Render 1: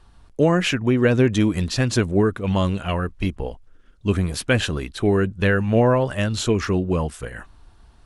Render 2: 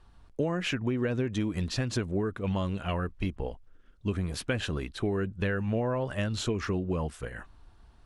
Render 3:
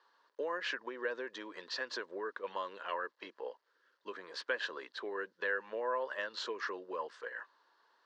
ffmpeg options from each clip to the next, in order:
-af "highshelf=f=6100:g=-6.5,acompressor=threshold=0.1:ratio=6,volume=0.531"
-af "acrusher=bits=11:mix=0:aa=0.000001,highpass=f=430:w=0.5412,highpass=f=430:w=1.3066,equalizer=f=510:t=q:w=4:g=4,equalizer=f=720:t=q:w=4:g=-8,equalizer=f=1000:t=q:w=4:g=9,equalizer=f=1700:t=q:w=4:g=9,equalizer=f=2400:t=q:w=4:g=-6,equalizer=f=4500:t=q:w=4:g=5,lowpass=f=5500:w=0.5412,lowpass=f=5500:w=1.3066,volume=0.501"

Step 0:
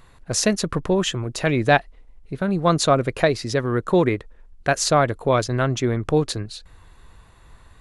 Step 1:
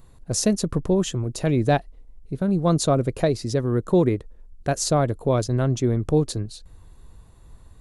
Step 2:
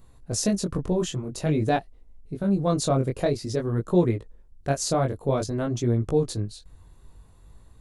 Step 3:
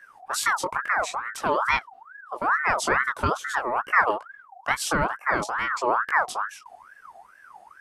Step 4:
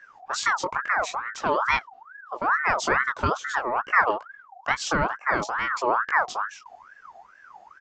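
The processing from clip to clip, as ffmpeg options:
-af "equalizer=f=1900:t=o:w=2.7:g=-13.5,volume=1.26"
-af "flanger=delay=17:depth=5.9:speed=0.5"
-af "aeval=exprs='val(0)*sin(2*PI*1200*n/s+1200*0.4/2.3*sin(2*PI*2.3*n/s))':c=same,volume=1.33"
-af "aresample=16000,aresample=44100"

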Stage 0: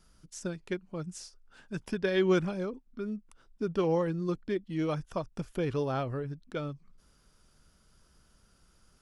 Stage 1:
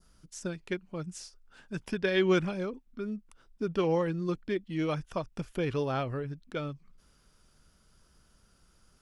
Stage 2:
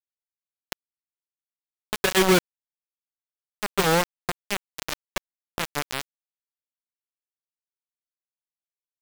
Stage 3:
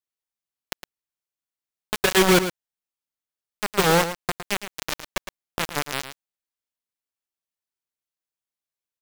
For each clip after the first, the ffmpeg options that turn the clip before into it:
-af "adynamicequalizer=threshold=0.00316:dfrequency=2500:dqfactor=1.1:tfrequency=2500:tqfactor=1.1:attack=5:release=100:ratio=0.375:range=2.5:mode=boostabove:tftype=bell"
-af "acrusher=bits=3:mix=0:aa=0.000001,volume=1.68"
-af "aecho=1:1:110:0.282,volume=1.26"

